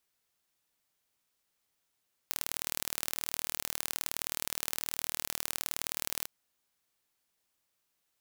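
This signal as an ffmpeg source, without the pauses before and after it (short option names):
-f lavfi -i "aevalsrc='0.596*eq(mod(n,1137),0)*(0.5+0.5*eq(mod(n,2274),0))':d=3.95:s=44100"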